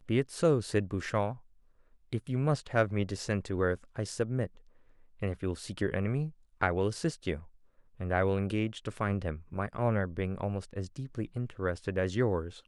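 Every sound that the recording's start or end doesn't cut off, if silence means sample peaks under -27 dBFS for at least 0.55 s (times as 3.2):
2.13–4.44
5.23–7.33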